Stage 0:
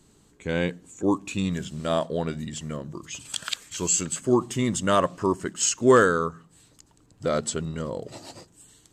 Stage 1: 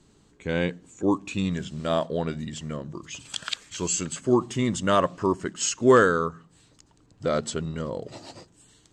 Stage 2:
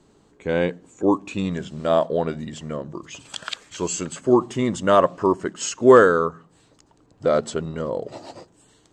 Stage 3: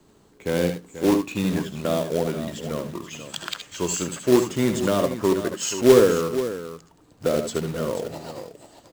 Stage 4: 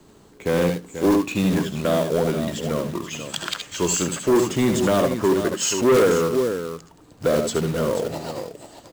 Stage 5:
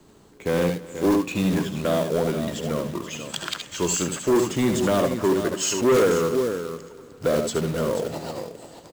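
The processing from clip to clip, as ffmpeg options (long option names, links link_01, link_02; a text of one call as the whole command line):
ffmpeg -i in.wav -af "lowpass=6600" out.wav
ffmpeg -i in.wav -af "equalizer=frequency=620:width_type=o:width=2.6:gain=9,volume=-2dB" out.wav
ffmpeg -i in.wav -filter_complex "[0:a]acrossover=split=260|480|3300[link_01][link_02][link_03][link_04];[link_03]acompressor=threshold=-29dB:ratio=10[link_05];[link_01][link_02][link_05][link_04]amix=inputs=4:normalize=0,acrusher=bits=3:mode=log:mix=0:aa=0.000001,aecho=1:1:69|79|484:0.282|0.299|0.266" out.wav
ffmpeg -i in.wav -af "asoftclip=type=tanh:threshold=-18dB,volume=5.5dB" out.wav
ffmpeg -i in.wav -af "aecho=1:1:299|598|897|1196:0.106|0.0551|0.0286|0.0149,volume=-2dB" out.wav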